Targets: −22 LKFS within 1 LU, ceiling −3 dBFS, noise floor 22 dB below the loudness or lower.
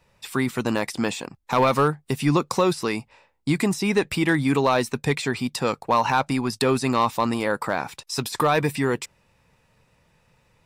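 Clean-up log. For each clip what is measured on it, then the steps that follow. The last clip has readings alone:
share of clipped samples 0.3%; peaks flattened at −11.5 dBFS; integrated loudness −23.5 LKFS; sample peak −11.5 dBFS; target loudness −22.0 LKFS
→ clipped peaks rebuilt −11.5 dBFS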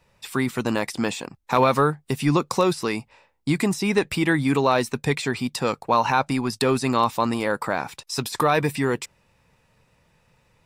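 share of clipped samples 0.0%; integrated loudness −23.0 LKFS; sample peak −4.5 dBFS; target loudness −22.0 LKFS
→ level +1 dB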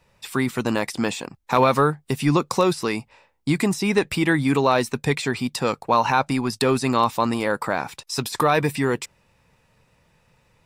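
integrated loudness −22.0 LKFS; sample peak −3.5 dBFS; background noise floor −64 dBFS

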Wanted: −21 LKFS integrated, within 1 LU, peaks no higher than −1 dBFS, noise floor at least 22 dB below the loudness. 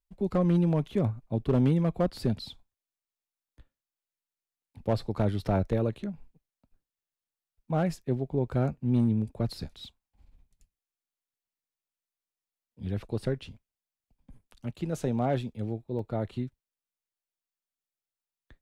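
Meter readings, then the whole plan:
share of clipped samples 0.3%; peaks flattened at −17.5 dBFS; number of dropouts 1; longest dropout 2.4 ms; integrated loudness −29.5 LKFS; sample peak −17.5 dBFS; target loudness −21.0 LKFS
→ clipped peaks rebuilt −17.5 dBFS
repair the gap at 0:15.99, 2.4 ms
level +8.5 dB

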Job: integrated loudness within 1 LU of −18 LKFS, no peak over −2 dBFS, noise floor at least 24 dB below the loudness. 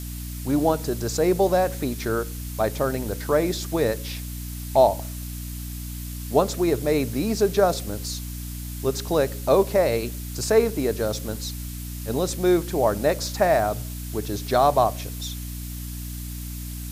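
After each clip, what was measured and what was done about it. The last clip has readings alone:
mains hum 60 Hz; hum harmonics up to 300 Hz; level of the hum −31 dBFS; background noise floor −33 dBFS; target noise floor −49 dBFS; integrated loudness −24.5 LKFS; sample peak −5.0 dBFS; target loudness −18.0 LKFS
→ mains-hum notches 60/120/180/240/300 Hz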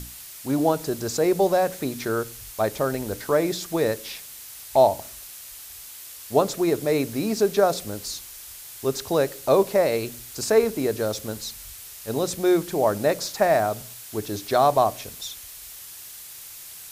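mains hum none found; background noise floor −41 dBFS; target noise floor −48 dBFS
→ broadband denoise 7 dB, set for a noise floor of −41 dBFS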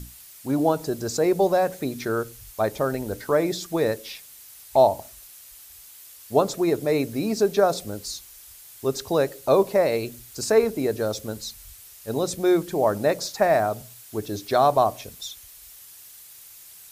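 background noise floor −47 dBFS; target noise floor −48 dBFS
→ broadband denoise 6 dB, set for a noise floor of −47 dBFS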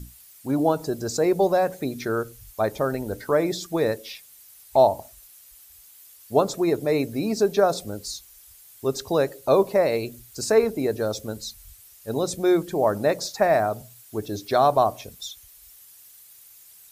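background noise floor −50 dBFS; integrated loudness −23.5 LKFS; sample peak −5.5 dBFS; target loudness −18.0 LKFS
→ level +5.5 dB
brickwall limiter −2 dBFS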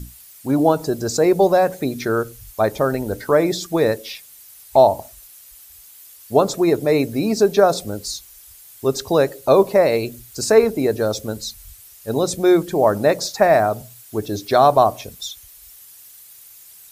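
integrated loudness −18.5 LKFS; sample peak −2.0 dBFS; background noise floor −45 dBFS

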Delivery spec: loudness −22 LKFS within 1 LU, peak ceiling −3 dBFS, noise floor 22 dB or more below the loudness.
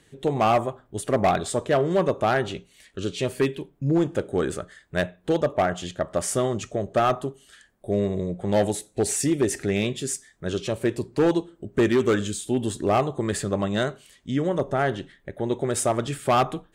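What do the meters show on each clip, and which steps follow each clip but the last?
share of clipped samples 1.2%; peaks flattened at −14.5 dBFS; integrated loudness −25.0 LKFS; sample peak −14.5 dBFS; target loudness −22.0 LKFS
→ clipped peaks rebuilt −14.5 dBFS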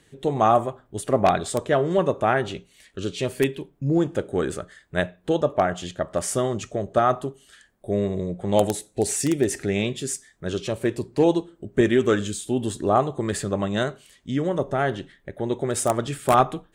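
share of clipped samples 0.0%; integrated loudness −24.0 LKFS; sample peak −5.5 dBFS; target loudness −22.0 LKFS
→ level +2 dB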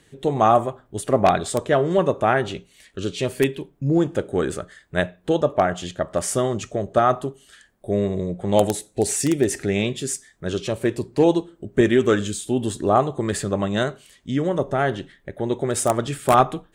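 integrated loudness −22.0 LKFS; sample peak −3.5 dBFS; background noise floor −59 dBFS

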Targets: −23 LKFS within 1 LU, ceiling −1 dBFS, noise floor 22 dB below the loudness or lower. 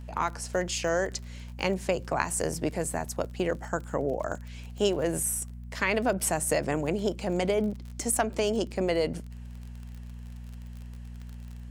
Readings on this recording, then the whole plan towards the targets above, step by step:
crackle rate 37 per second; mains hum 60 Hz; hum harmonics up to 240 Hz; level of the hum −39 dBFS; integrated loudness −29.5 LKFS; sample peak −8.0 dBFS; target loudness −23.0 LKFS
→ click removal
hum removal 60 Hz, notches 4
level +6.5 dB

